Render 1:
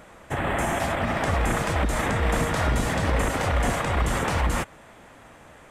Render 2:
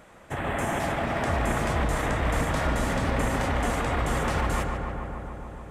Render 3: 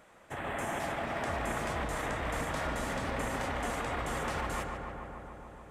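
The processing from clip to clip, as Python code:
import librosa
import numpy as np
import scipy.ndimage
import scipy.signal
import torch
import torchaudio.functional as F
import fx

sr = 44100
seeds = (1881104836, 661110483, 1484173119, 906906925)

y1 = fx.echo_filtered(x, sr, ms=146, feedback_pct=83, hz=2700.0, wet_db=-5)
y1 = y1 * 10.0 ** (-4.0 / 20.0)
y2 = fx.low_shelf(y1, sr, hz=240.0, db=-7.0)
y2 = y2 * 10.0 ** (-6.0 / 20.0)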